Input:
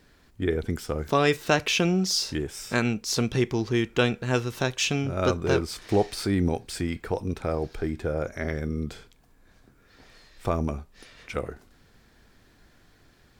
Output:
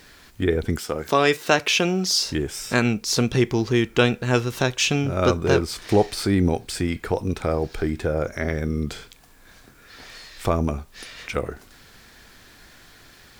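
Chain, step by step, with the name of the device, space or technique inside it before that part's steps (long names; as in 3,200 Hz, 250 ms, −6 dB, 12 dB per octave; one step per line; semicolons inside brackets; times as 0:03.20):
0:00.78–0:02.26: high-pass filter 280 Hz 6 dB per octave
noise-reduction cassette on a plain deck (one half of a high-frequency compander encoder only; tape wow and flutter 29 cents; white noise bed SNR 41 dB)
level +4.5 dB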